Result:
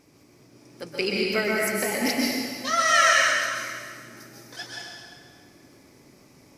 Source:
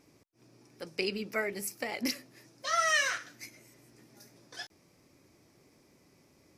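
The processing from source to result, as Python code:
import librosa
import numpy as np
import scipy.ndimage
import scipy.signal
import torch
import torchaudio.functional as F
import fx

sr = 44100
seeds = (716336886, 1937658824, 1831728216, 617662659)

y = fx.rev_plate(x, sr, seeds[0], rt60_s=2.0, hf_ratio=0.85, predelay_ms=110, drr_db=-3.5)
y = y * 10.0 ** (5.0 / 20.0)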